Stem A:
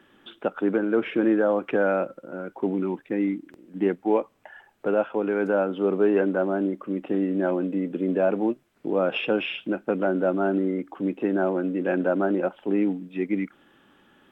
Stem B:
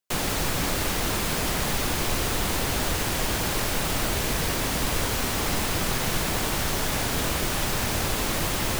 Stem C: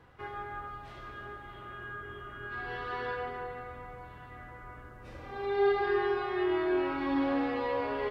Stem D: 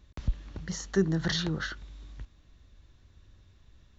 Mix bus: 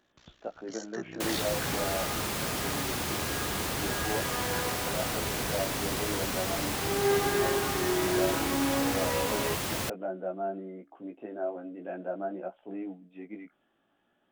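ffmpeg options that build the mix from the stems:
ffmpeg -i stem1.wav -i stem2.wav -i stem3.wav -i stem4.wav -filter_complex "[0:a]equalizer=frequency=670:width_type=o:width=0.39:gain=12,flanger=delay=16:depth=2.4:speed=0.48,volume=-13.5dB[link_01];[1:a]highpass=74,adelay=1100,volume=-5.5dB[link_02];[2:a]adelay=1450,volume=0dB[link_03];[3:a]highpass=frequency=960:poles=1,tremolo=f=61:d=0.947,volume=-1.5dB[link_04];[link_01][link_02][link_03][link_04]amix=inputs=4:normalize=0" out.wav

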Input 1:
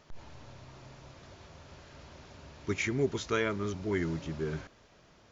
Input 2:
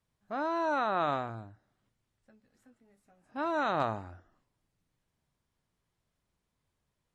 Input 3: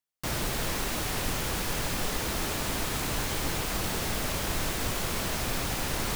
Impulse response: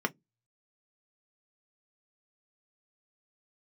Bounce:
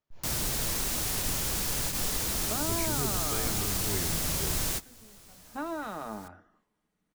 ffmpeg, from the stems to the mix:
-filter_complex "[0:a]agate=range=-24dB:threshold=-52dB:ratio=16:detection=peak,asubboost=boost=4.5:cutoff=110,volume=-5dB,asplit=2[link_01][link_02];[1:a]alimiter=level_in=4.5dB:limit=-24dB:level=0:latency=1:release=164,volume=-4.5dB,adelay=2200,volume=-3dB,asplit=2[link_03][link_04];[link_04]volume=-5.5dB[link_05];[2:a]bass=frequency=250:gain=3,treble=frequency=4000:gain=10,volume=-5dB,asplit=2[link_06][link_07];[link_07]volume=-23.5dB[link_08];[link_02]apad=whole_len=271287[link_09];[link_06][link_09]sidechaingate=range=-33dB:threshold=-58dB:ratio=16:detection=peak[link_10];[3:a]atrim=start_sample=2205[link_11];[link_05][link_11]afir=irnorm=-1:irlink=0[link_12];[link_08]aecho=0:1:128:1[link_13];[link_01][link_03][link_10][link_12][link_13]amix=inputs=5:normalize=0,acrossover=split=420|3000[link_14][link_15][link_16];[link_15]acompressor=threshold=-35dB:ratio=6[link_17];[link_14][link_17][link_16]amix=inputs=3:normalize=0"

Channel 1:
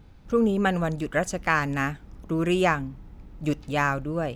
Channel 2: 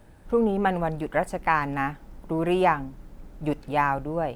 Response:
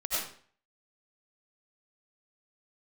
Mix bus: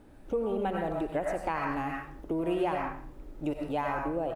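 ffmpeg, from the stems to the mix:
-filter_complex "[0:a]lowpass=frequency=1400:poles=1,lowshelf=frequency=200:width_type=q:width=3:gain=-13,acompressor=threshold=-31dB:ratio=6,volume=-1.5dB[link_01];[1:a]adelay=0.6,volume=-10.5dB,asplit=2[link_02][link_03];[link_03]volume=-4dB[link_04];[2:a]atrim=start_sample=2205[link_05];[link_04][link_05]afir=irnorm=-1:irlink=0[link_06];[link_01][link_02][link_06]amix=inputs=3:normalize=0,acompressor=threshold=-29dB:ratio=2"

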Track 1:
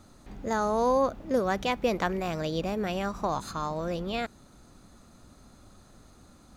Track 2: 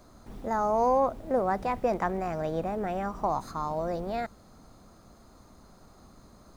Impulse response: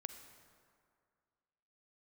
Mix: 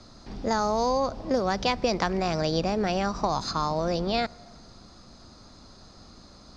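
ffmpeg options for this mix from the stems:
-filter_complex "[0:a]volume=0dB[link_01];[1:a]volume=-2dB,asplit=2[link_02][link_03];[link_03]volume=-5.5dB[link_04];[2:a]atrim=start_sample=2205[link_05];[link_04][link_05]afir=irnorm=-1:irlink=0[link_06];[link_01][link_02][link_06]amix=inputs=3:normalize=0,acrossover=split=150|3000[link_07][link_08][link_09];[link_08]acompressor=threshold=-22dB:ratio=6[link_10];[link_07][link_10][link_09]amix=inputs=3:normalize=0,lowpass=frequency=5000:width_type=q:width=4.3"

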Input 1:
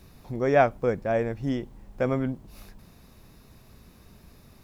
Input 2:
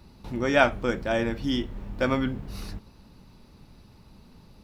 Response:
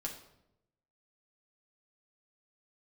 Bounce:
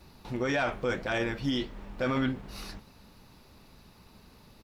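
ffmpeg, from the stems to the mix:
-filter_complex "[0:a]volume=-6dB[link_01];[1:a]flanger=delay=3:depth=6.8:regen=-87:speed=1.7:shape=triangular,asplit=2[link_02][link_03];[link_03]highpass=frequency=720:poles=1,volume=11dB,asoftclip=type=tanh:threshold=-8.5dB[link_04];[link_02][link_04]amix=inputs=2:normalize=0,lowpass=frequency=7400:poles=1,volume=-6dB,adelay=5,volume=-0.5dB[link_05];[link_01][link_05]amix=inputs=2:normalize=0,alimiter=limit=-20dB:level=0:latency=1:release=13"

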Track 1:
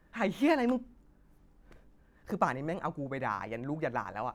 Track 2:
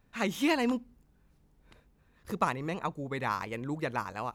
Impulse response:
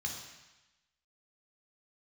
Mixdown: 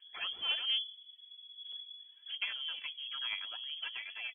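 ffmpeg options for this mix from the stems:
-filter_complex "[0:a]bass=frequency=250:gain=13,treble=frequency=4000:gain=9,volume=-11.5dB,asplit=2[link_01][link_02];[1:a]afwtdn=0.00708,acompressor=threshold=-48dB:ratio=2,adelay=2.9,volume=-2dB[link_03];[link_02]apad=whole_len=191665[link_04];[link_03][link_04]sidechaincompress=threshold=-39dB:ratio=8:attack=12:release=171[link_05];[link_01][link_05]amix=inputs=2:normalize=0,aphaser=in_gain=1:out_gain=1:delay=4.4:decay=0.61:speed=0.6:type=triangular,aeval=exprs='clip(val(0),-1,0.0126)':channel_layout=same,lowpass=frequency=2900:width_type=q:width=0.5098,lowpass=frequency=2900:width_type=q:width=0.6013,lowpass=frequency=2900:width_type=q:width=0.9,lowpass=frequency=2900:width_type=q:width=2.563,afreqshift=-3400"

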